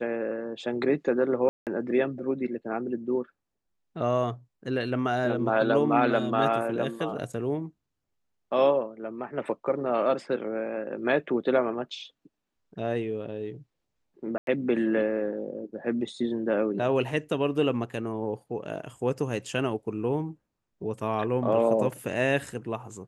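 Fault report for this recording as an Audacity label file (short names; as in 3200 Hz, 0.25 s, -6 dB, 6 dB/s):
1.490000	1.670000	gap 0.178 s
14.380000	14.470000	gap 92 ms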